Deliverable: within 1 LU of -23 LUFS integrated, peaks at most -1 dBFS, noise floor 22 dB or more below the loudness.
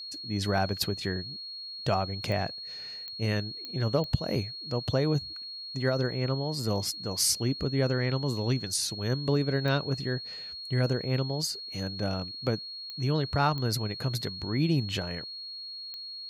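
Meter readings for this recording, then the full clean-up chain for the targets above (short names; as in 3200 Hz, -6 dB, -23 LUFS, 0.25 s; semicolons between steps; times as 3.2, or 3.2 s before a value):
clicks 8; steady tone 4300 Hz; tone level -38 dBFS; loudness -30.0 LUFS; peak -12.0 dBFS; loudness target -23.0 LUFS
-> de-click; notch 4300 Hz, Q 30; gain +7 dB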